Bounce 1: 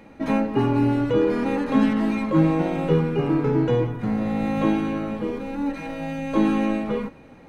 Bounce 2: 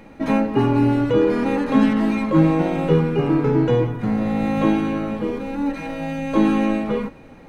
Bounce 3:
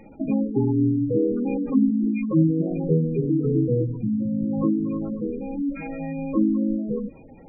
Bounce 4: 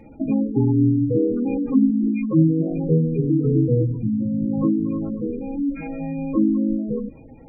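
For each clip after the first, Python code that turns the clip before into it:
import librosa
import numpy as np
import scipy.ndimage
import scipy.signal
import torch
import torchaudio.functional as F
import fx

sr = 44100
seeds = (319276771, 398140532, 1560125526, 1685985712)

y1 = fx.dmg_noise_colour(x, sr, seeds[0], colour='brown', level_db=-57.0)
y1 = F.gain(torch.from_numpy(y1), 3.0).numpy()
y2 = fx.dynamic_eq(y1, sr, hz=780.0, q=1.0, threshold_db=-33.0, ratio=4.0, max_db=-7)
y2 = fx.spec_gate(y2, sr, threshold_db=-15, keep='strong')
y2 = F.gain(torch.from_numpy(y2), -2.0).numpy()
y3 = fx.low_shelf(y2, sr, hz=270.0, db=6.0)
y3 = fx.notch_comb(y3, sr, f0_hz=190.0)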